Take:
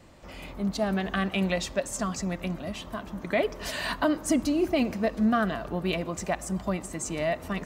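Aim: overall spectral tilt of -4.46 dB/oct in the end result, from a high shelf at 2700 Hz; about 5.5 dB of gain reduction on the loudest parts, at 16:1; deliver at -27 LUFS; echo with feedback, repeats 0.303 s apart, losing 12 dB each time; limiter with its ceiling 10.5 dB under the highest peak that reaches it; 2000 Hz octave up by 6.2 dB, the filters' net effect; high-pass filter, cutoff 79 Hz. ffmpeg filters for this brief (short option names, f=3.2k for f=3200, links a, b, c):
-af "highpass=79,equalizer=f=2k:t=o:g=9,highshelf=f=2.7k:g=-3.5,acompressor=threshold=-24dB:ratio=16,alimiter=limit=-23dB:level=0:latency=1,aecho=1:1:303|606|909:0.251|0.0628|0.0157,volume=6dB"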